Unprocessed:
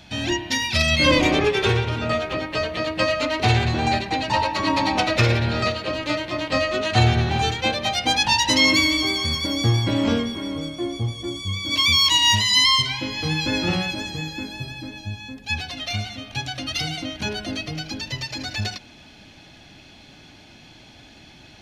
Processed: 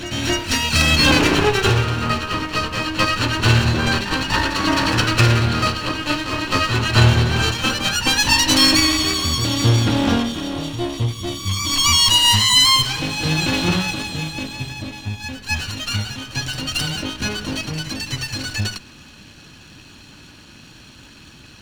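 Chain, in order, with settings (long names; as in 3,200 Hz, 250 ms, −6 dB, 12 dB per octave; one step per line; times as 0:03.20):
lower of the sound and its delayed copy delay 0.71 ms
backwards echo 263 ms −10 dB
level +4.5 dB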